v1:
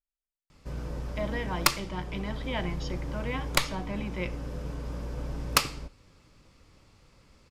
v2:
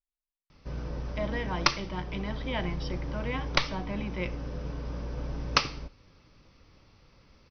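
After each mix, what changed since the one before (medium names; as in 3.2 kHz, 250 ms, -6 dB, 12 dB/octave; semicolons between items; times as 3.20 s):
master: add brick-wall FIR low-pass 6.2 kHz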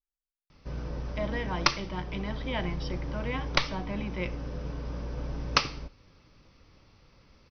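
no change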